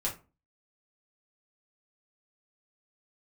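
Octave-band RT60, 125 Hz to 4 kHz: 0.40, 0.40, 0.35, 0.30, 0.25, 0.20 s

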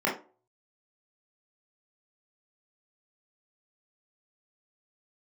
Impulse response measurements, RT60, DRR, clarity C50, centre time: 0.40 s, -5.5 dB, 7.5 dB, 30 ms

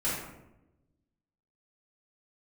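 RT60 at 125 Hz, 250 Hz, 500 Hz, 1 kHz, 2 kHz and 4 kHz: 1.5, 1.3, 1.1, 0.80, 0.70, 0.50 s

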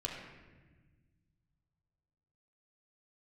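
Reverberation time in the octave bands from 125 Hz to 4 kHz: 3.0, 2.3, 1.4, 1.2, 1.3, 0.95 s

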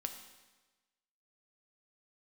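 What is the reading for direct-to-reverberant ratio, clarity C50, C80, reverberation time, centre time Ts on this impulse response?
5.5 dB, 8.5 dB, 10.0 dB, 1.2 s, 20 ms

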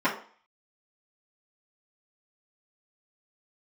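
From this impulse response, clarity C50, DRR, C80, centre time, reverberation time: 9.0 dB, -11.5 dB, 13.5 dB, 21 ms, 0.45 s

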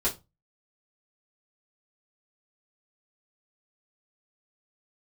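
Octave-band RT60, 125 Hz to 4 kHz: 0.40, 0.30, 0.25, 0.25, 0.20, 0.20 s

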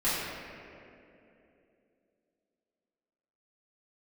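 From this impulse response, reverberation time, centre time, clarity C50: 2.9 s, 0.147 s, -2.5 dB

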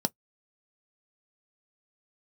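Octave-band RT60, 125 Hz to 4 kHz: 0.10, 0.10, 0.10, 0.10, 0.10, 0.10 s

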